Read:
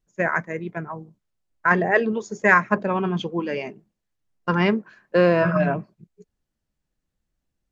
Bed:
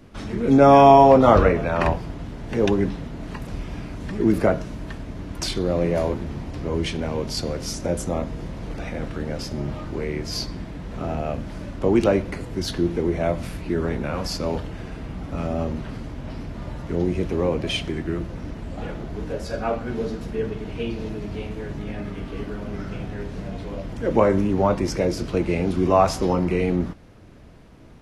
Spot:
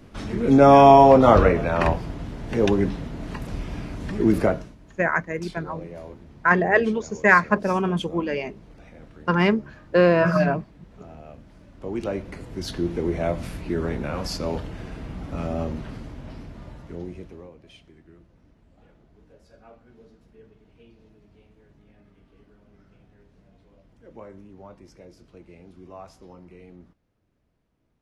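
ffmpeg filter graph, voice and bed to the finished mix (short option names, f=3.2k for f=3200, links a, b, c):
-filter_complex "[0:a]adelay=4800,volume=0.5dB[a];[1:a]volume=14.5dB,afade=t=out:st=4.4:d=0.35:silence=0.149624,afade=t=in:st=11.68:d=1.44:silence=0.188365,afade=t=out:st=15.61:d=1.91:silence=0.0707946[b];[a][b]amix=inputs=2:normalize=0"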